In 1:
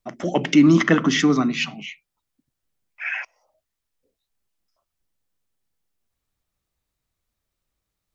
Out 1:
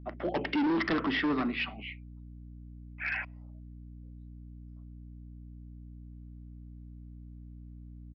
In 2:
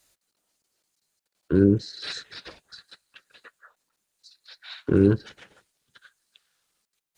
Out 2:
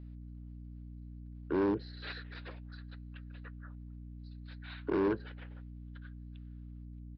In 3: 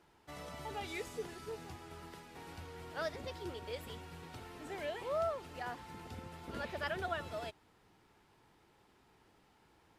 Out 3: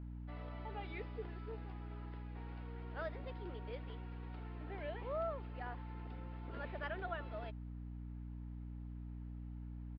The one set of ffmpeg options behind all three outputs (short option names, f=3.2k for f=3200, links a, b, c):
-filter_complex "[0:a]acrossover=split=240 3200:gain=0.126 1 0.0631[a][b][c];[a][b][c]amix=inputs=3:normalize=0,aeval=exprs='val(0)+0.00891*(sin(2*PI*60*n/s)+sin(2*PI*2*60*n/s)/2+sin(2*PI*3*60*n/s)/3+sin(2*PI*4*60*n/s)/4+sin(2*PI*5*60*n/s)/5)':c=same,aresample=11025,asoftclip=type=hard:threshold=-21dB,aresample=44100,volume=-4.5dB"